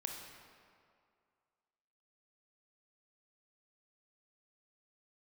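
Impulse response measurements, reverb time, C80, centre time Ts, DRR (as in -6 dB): 2.3 s, 4.5 dB, 71 ms, 1.5 dB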